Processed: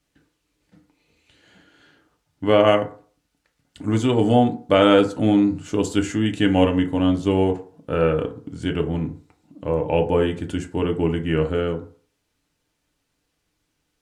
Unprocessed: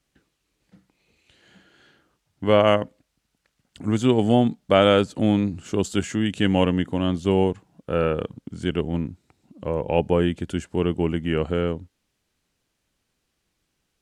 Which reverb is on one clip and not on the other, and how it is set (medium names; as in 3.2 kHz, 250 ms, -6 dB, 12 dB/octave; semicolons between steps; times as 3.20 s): FDN reverb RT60 0.44 s, low-frequency decay 0.8×, high-frequency decay 0.45×, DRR 3.5 dB